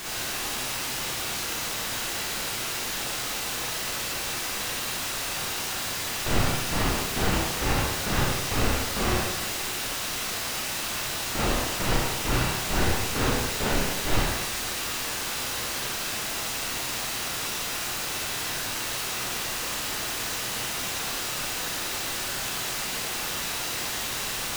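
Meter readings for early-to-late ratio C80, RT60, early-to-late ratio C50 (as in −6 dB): 0.5 dB, 1.1 s, −3.5 dB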